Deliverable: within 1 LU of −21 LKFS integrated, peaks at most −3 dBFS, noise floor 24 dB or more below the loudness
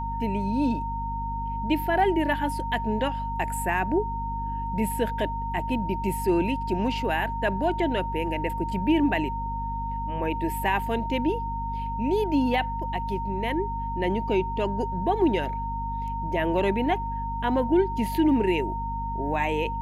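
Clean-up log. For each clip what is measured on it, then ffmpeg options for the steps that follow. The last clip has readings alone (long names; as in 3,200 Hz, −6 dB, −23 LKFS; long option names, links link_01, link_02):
mains hum 50 Hz; hum harmonics up to 250 Hz; level of the hum −30 dBFS; interfering tone 920 Hz; level of the tone −30 dBFS; integrated loudness −26.5 LKFS; sample peak −12.0 dBFS; target loudness −21.0 LKFS
→ -af "bandreject=frequency=50:width_type=h:width=4,bandreject=frequency=100:width_type=h:width=4,bandreject=frequency=150:width_type=h:width=4,bandreject=frequency=200:width_type=h:width=4,bandreject=frequency=250:width_type=h:width=4"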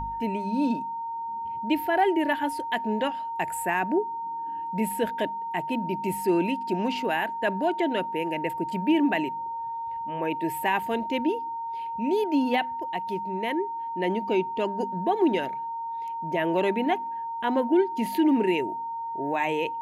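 mains hum none found; interfering tone 920 Hz; level of the tone −30 dBFS
→ -af "bandreject=frequency=920:width=30"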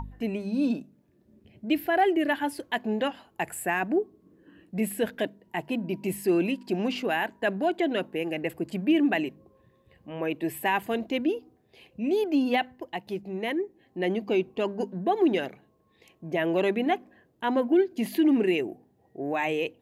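interfering tone none found; integrated loudness −28.0 LKFS; sample peak −13.5 dBFS; target loudness −21.0 LKFS
→ -af "volume=7dB"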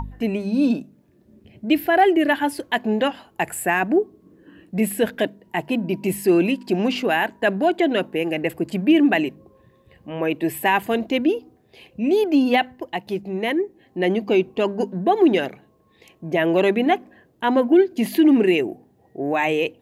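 integrated loudness −21.0 LKFS; sample peak −6.5 dBFS; background noise floor −58 dBFS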